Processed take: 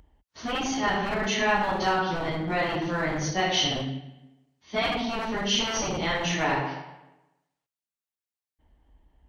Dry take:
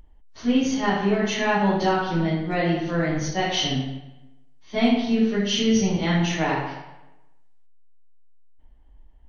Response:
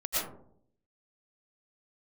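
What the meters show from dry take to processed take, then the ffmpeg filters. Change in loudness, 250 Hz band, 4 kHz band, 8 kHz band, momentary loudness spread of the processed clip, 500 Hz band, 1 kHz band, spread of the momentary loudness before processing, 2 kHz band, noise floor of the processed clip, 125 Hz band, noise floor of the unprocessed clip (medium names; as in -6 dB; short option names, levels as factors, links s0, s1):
-3.5 dB, -9.5 dB, 0.0 dB, no reading, 9 LU, -4.0 dB, -0.5 dB, 8 LU, +0.5 dB, under -85 dBFS, -7.0 dB, -50 dBFS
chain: -filter_complex "[0:a]highpass=56,acrossover=split=620[s0][s1];[s0]aeval=exprs='0.0531*(abs(mod(val(0)/0.0531+3,4)-2)-1)':c=same[s2];[s2][s1]amix=inputs=2:normalize=0"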